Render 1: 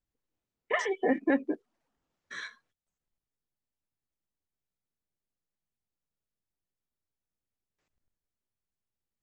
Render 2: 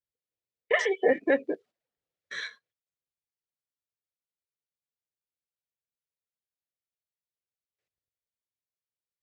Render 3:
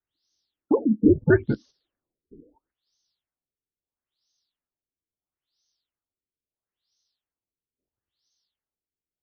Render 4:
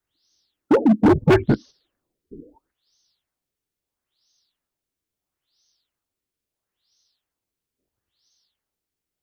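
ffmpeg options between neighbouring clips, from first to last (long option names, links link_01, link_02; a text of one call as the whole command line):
ffmpeg -i in.wav -af "highpass=60,agate=range=-13dB:threshold=-52dB:ratio=16:detection=peak,equalizer=frequency=125:width_type=o:width=1:gain=4,equalizer=frequency=250:width_type=o:width=1:gain=-8,equalizer=frequency=500:width_type=o:width=1:gain=10,equalizer=frequency=1000:width_type=o:width=1:gain=-6,equalizer=frequency=2000:width_type=o:width=1:gain=5,equalizer=frequency=4000:width_type=o:width=1:gain=6" out.wav
ffmpeg -i in.wav -af "afreqshift=-170,aexciter=amount=5.6:drive=9.8:freq=3600,afftfilt=real='re*lt(b*sr/1024,480*pow(6500/480,0.5+0.5*sin(2*PI*0.75*pts/sr)))':imag='im*lt(b*sr/1024,480*pow(6500/480,0.5+0.5*sin(2*PI*0.75*pts/sr)))':win_size=1024:overlap=0.75,volume=6.5dB" out.wav
ffmpeg -i in.wav -af "volume=19dB,asoftclip=hard,volume=-19dB,volume=8.5dB" out.wav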